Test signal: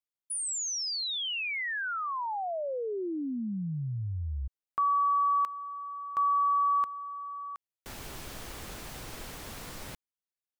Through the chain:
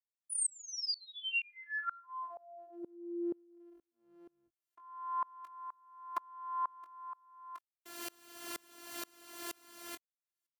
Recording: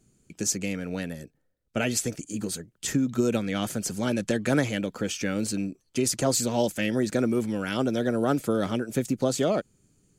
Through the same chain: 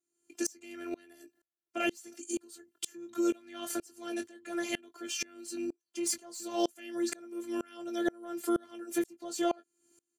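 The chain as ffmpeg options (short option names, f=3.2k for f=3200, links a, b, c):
-filter_complex "[0:a]asplit=2[a][b];[b]acompressor=threshold=-40dB:ratio=6:attack=45:release=37,volume=-1.5dB[c];[a][c]amix=inputs=2:normalize=0,afftfilt=real='hypot(re,im)*cos(PI*b)':imag='0':win_size=512:overlap=0.75,asplit=2[d][e];[e]adelay=21,volume=-10dB[f];[d][f]amix=inputs=2:normalize=0,acontrast=28,highpass=240,equalizer=f=12k:t=o:w=0.74:g=3,asoftclip=type=tanh:threshold=-9dB,aeval=exprs='val(0)*pow(10,-30*if(lt(mod(-2.1*n/s,1),2*abs(-2.1)/1000),1-mod(-2.1*n/s,1)/(2*abs(-2.1)/1000),(mod(-2.1*n/s,1)-2*abs(-2.1)/1000)/(1-2*abs(-2.1)/1000))/20)':c=same,volume=-2.5dB"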